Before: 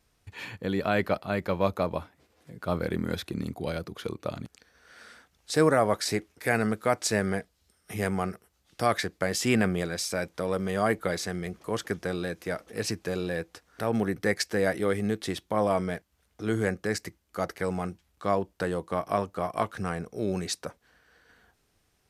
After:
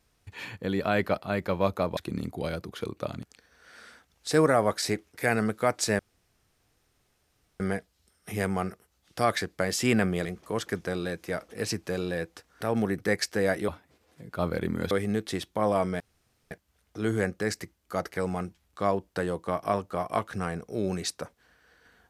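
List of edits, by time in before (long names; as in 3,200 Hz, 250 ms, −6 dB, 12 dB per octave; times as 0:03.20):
0:01.97–0:03.20: move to 0:14.86
0:07.22: splice in room tone 1.61 s
0:09.87–0:11.43: remove
0:15.95: splice in room tone 0.51 s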